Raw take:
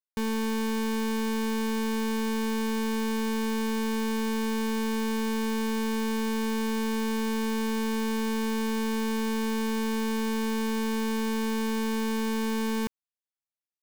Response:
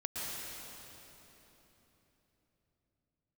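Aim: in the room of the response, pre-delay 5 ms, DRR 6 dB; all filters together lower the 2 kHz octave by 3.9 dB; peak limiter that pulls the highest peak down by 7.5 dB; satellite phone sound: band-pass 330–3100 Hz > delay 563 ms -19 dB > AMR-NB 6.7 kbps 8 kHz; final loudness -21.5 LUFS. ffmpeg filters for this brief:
-filter_complex "[0:a]equalizer=f=2000:t=o:g=-4.5,alimiter=level_in=3.35:limit=0.0631:level=0:latency=1,volume=0.299,asplit=2[s0][s1];[1:a]atrim=start_sample=2205,adelay=5[s2];[s1][s2]afir=irnorm=-1:irlink=0,volume=0.335[s3];[s0][s3]amix=inputs=2:normalize=0,highpass=330,lowpass=3100,aecho=1:1:563:0.112,volume=8.41" -ar 8000 -c:a libopencore_amrnb -b:a 6700

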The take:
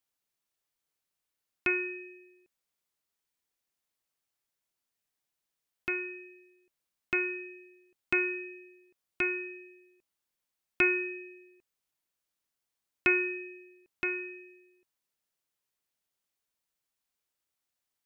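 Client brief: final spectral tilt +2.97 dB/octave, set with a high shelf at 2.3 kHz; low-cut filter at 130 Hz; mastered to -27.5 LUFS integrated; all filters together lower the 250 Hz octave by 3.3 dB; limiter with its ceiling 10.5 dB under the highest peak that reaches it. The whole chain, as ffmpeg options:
-af "highpass=130,equalizer=f=250:t=o:g=-6.5,highshelf=f=2300:g=-6,volume=3.35,alimiter=limit=0.188:level=0:latency=1"

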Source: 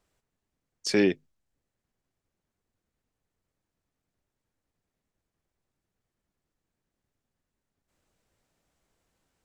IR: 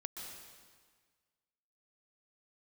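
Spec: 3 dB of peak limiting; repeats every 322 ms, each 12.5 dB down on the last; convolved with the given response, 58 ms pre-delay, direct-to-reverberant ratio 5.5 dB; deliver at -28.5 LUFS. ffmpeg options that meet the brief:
-filter_complex "[0:a]alimiter=limit=0.2:level=0:latency=1,aecho=1:1:322|644|966:0.237|0.0569|0.0137,asplit=2[s0][s1];[1:a]atrim=start_sample=2205,adelay=58[s2];[s1][s2]afir=irnorm=-1:irlink=0,volume=0.668[s3];[s0][s3]amix=inputs=2:normalize=0"

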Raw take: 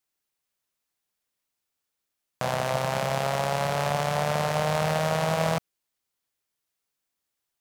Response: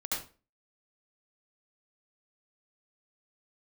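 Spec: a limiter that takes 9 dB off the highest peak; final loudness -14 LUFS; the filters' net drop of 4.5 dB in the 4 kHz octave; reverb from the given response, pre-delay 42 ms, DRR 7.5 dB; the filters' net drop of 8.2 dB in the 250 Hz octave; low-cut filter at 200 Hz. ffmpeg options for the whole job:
-filter_complex "[0:a]highpass=200,equalizer=f=250:t=o:g=-7.5,equalizer=f=4000:t=o:g=-6,alimiter=limit=0.0841:level=0:latency=1,asplit=2[s0][s1];[1:a]atrim=start_sample=2205,adelay=42[s2];[s1][s2]afir=irnorm=-1:irlink=0,volume=0.251[s3];[s0][s3]amix=inputs=2:normalize=0,volume=8.91"

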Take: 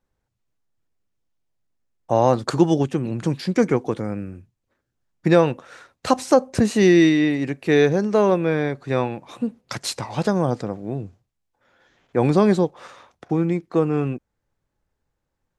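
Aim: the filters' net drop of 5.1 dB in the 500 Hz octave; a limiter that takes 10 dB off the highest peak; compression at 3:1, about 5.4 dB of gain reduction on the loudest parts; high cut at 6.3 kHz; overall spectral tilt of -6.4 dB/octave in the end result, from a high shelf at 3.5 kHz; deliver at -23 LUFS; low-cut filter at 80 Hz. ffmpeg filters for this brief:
-af "highpass=80,lowpass=6300,equalizer=f=500:t=o:g=-6.5,highshelf=f=3500:g=-6,acompressor=threshold=0.1:ratio=3,volume=2.11,alimiter=limit=0.251:level=0:latency=1"

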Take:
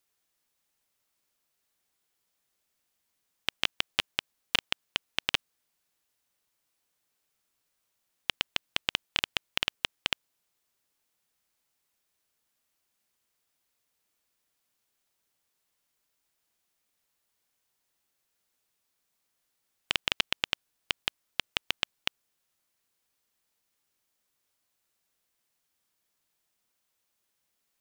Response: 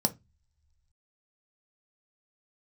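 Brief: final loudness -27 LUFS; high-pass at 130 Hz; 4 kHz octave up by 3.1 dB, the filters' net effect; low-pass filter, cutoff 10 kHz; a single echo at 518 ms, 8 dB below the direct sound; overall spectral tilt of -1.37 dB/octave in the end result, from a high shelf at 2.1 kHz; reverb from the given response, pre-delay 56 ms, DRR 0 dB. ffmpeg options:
-filter_complex "[0:a]highpass=130,lowpass=10000,highshelf=f=2100:g=-4,equalizer=f=4000:t=o:g=8.5,aecho=1:1:518:0.398,asplit=2[s0][s1];[1:a]atrim=start_sample=2205,adelay=56[s2];[s1][s2]afir=irnorm=-1:irlink=0,volume=0.447[s3];[s0][s3]amix=inputs=2:normalize=0,volume=1.12"

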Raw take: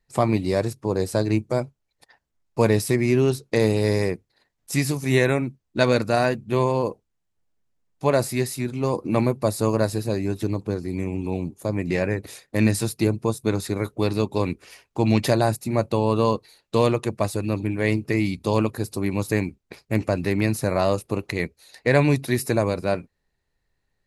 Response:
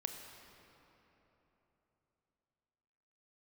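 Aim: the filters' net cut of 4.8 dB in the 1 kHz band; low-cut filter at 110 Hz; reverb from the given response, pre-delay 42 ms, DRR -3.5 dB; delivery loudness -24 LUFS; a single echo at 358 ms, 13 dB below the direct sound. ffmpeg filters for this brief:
-filter_complex "[0:a]highpass=110,equalizer=f=1000:t=o:g=-6.5,aecho=1:1:358:0.224,asplit=2[s0][s1];[1:a]atrim=start_sample=2205,adelay=42[s2];[s1][s2]afir=irnorm=-1:irlink=0,volume=1.58[s3];[s0][s3]amix=inputs=2:normalize=0,volume=0.631"

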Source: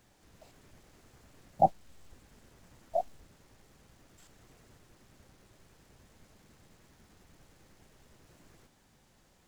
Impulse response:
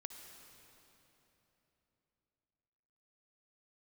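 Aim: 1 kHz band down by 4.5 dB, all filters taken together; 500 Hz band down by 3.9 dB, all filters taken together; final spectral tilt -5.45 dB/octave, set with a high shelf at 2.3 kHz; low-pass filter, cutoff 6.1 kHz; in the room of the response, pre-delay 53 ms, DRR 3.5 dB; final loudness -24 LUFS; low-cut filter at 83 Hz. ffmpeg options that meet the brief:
-filter_complex "[0:a]highpass=83,lowpass=6100,equalizer=f=500:t=o:g=-3,equalizer=f=1000:t=o:g=-6.5,highshelf=f=2300:g=7.5,asplit=2[s0][s1];[1:a]atrim=start_sample=2205,adelay=53[s2];[s1][s2]afir=irnorm=-1:irlink=0,volume=1.06[s3];[s0][s3]amix=inputs=2:normalize=0,volume=5.01"

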